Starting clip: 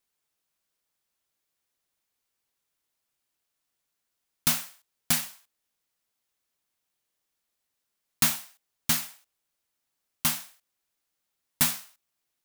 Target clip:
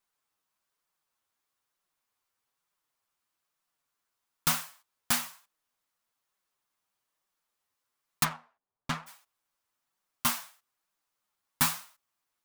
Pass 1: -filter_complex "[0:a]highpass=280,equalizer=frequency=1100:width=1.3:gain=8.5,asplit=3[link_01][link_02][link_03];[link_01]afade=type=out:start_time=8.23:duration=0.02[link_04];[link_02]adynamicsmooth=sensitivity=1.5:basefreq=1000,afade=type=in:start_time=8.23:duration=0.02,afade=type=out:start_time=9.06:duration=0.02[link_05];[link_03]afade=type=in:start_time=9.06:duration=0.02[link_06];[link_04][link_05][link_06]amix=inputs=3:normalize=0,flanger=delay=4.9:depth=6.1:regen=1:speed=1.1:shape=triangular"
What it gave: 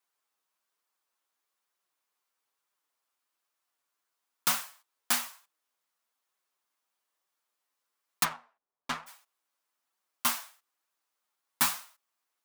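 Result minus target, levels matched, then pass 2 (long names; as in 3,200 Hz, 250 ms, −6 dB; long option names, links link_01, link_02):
250 Hz band −5.5 dB
-filter_complex "[0:a]equalizer=frequency=1100:width=1.3:gain=8.5,asplit=3[link_01][link_02][link_03];[link_01]afade=type=out:start_time=8.23:duration=0.02[link_04];[link_02]adynamicsmooth=sensitivity=1.5:basefreq=1000,afade=type=in:start_time=8.23:duration=0.02,afade=type=out:start_time=9.06:duration=0.02[link_05];[link_03]afade=type=in:start_time=9.06:duration=0.02[link_06];[link_04][link_05][link_06]amix=inputs=3:normalize=0,flanger=delay=4.9:depth=6.1:regen=1:speed=1.1:shape=triangular"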